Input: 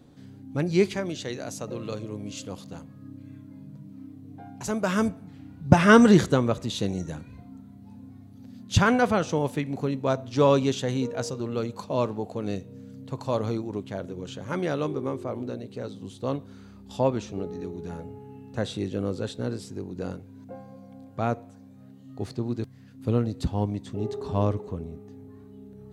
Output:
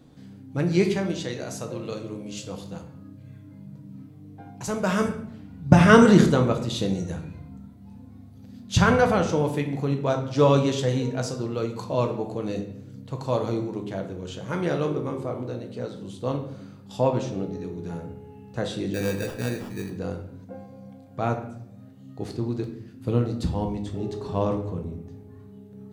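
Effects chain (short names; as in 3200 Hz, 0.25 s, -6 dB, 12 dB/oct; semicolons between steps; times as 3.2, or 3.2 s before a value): 18.94–19.9 sample-rate reducer 2100 Hz, jitter 0%; shoebox room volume 160 m³, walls mixed, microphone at 0.61 m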